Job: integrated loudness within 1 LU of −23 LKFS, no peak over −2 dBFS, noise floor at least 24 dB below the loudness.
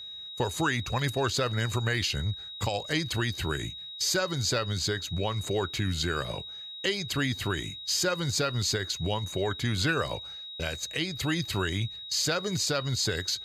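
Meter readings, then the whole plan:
interfering tone 3,800 Hz; level of the tone −39 dBFS; integrated loudness −29.5 LKFS; sample peak −15.0 dBFS; target loudness −23.0 LKFS
→ notch filter 3,800 Hz, Q 30
level +6.5 dB

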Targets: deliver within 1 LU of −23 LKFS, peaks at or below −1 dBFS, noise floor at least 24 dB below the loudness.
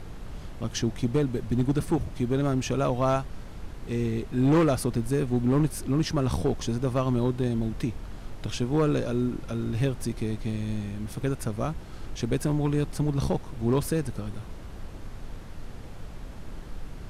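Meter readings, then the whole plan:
share of clipped samples 0.9%; peaks flattened at −17.0 dBFS; background noise floor −41 dBFS; target noise floor −52 dBFS; integrated loudness −27.5 LKFS; sample peak −17.0 dBFS; target loudness −23.0 LKFS
→ clipped peaks rebuilt −17 dBFS
noise reduction from a noise print 11 dB
level +4.5 dB

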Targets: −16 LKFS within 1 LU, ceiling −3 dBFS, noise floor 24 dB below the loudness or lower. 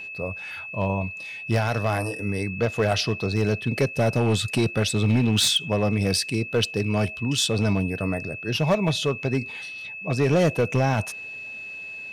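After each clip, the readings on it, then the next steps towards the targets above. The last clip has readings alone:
share of clipped samples 1.3%; peaks flattened at −14.5 dBFS; interfering tone 2,600 Hz; level of the tone −34 dBFS; integrated loudness −24.5 LKFS; sample peak −14.5 dBFS; target loudness −16.0 LKFS
→ clipped peaks rebuilt −14.5 dBFS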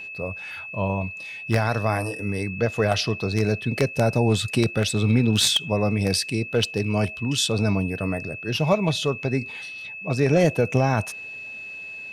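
share of clipped samples 0.0%; interfering tone 2,600 Hz; level of the tone −34 dBFS
→ notch filter 2,600 Hz, Q 30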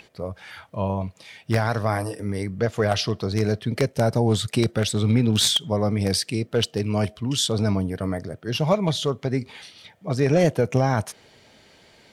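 interfering tone none found; integrated loudness −23.5 LKFS; sample peak −5.5 dBFS; target loudness −16.0 LKFS
→ level +7.5 dB
brickwall limiter −3 dBFS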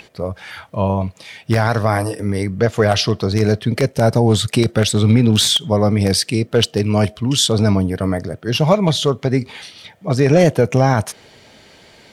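integrated loudness −16.5 LKFS; sample peak −3.0 dBFS; background noise floor −48 dBFS

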